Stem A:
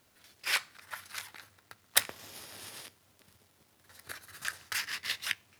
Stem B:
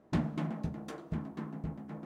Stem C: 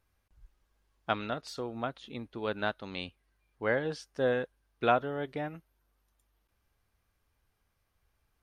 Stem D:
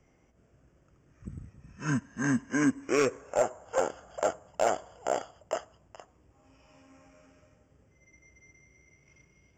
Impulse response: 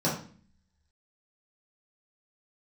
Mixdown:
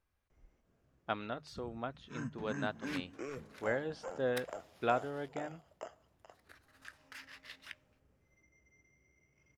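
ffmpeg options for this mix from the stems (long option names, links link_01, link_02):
-filter_complex "[0:a]highshelf=frequency=5200:gain=-6.5,adelay=2400,volume=-13.5dB[link_01];[1:a]adelay=2250,volume=-18dB[link_02];[2:a]volume=-5.5dB[link_03];[3:a]acrossover=split=170[link_04][link_05];[link_05]acompressor=threshold=-31dB:ratio=10[link_06];[link_04][link_06]amix=inputs=2:normalize=0,adelay=300,volume=-9.5dB[link_07];[link_01][link_02][link_03][link_07]amix=inputs=4:normalize=0,highshelf=frequency=5100:gain=-7,bandreject=frequency=50:width_type=h:width=6,bandreject=frequency=100:width_type=h:width=6,bandreject=frequency=150:width_type=h:width=6"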